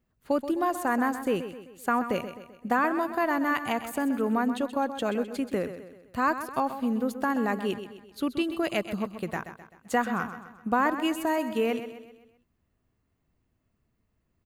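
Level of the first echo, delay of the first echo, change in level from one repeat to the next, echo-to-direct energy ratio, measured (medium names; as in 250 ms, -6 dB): -11.0 dB, 129 ms, -6.5 dB, -10.0 dB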